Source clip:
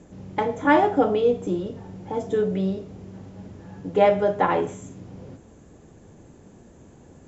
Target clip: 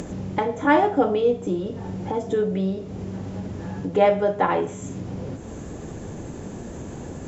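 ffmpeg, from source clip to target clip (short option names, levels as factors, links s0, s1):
-af "acompressor=mode=upward:threshold=0.0891:ratio=2.5"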